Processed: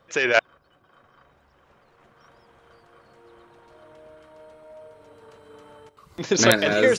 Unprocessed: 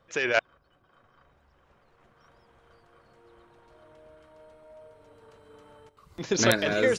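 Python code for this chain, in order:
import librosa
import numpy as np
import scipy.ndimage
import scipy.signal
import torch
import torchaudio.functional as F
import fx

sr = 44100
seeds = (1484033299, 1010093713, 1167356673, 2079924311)

y = fx.low_shelf(x, sr, hz=68.0, db=-10.5)
y = y * 10.0 ** (5.5 / 20.0)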